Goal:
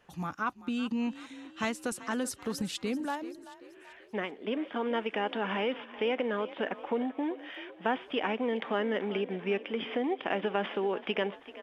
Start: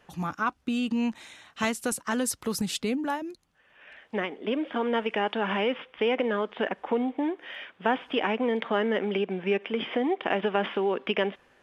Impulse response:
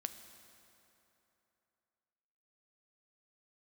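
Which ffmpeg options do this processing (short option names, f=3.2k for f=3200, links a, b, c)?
-filter_complex "[0:a]asettb=1/sr,asplit=3[a][b][c];[a]atrim=end=0.424[d];[b]atrim=start=0.42:end=2.87,asetpts=PTS-STARTPTS,afade=t=in:d=0.004:c=qsin,afade=t=out:st=2.446:d=0.004:c=qsin,highshelf=f=10k:g=-9.5[e];[c]atrim=start=2.866[f];[d][e]acrossfade=d=0.004:c1=hsin:c2=qsin[g];[g][f]acrossfade=d=0.004:c1=qsin:c2=hsin,asplit=5[h][i][j][k][l];[i]adelay=385,afreqshift=37,volume=-16dB[m];[j]adelay=770,afreqshift=74,volume=-22.2dB[n];[k]adelay=1155,afreqshift=111,volume=-28.4dB[o];[l]adelay=1540,afreqshift=148,volume=-34.6dB[p];[h][m][n][o][p]amix=inputs=5:normalize=0,volume=-4.5dB"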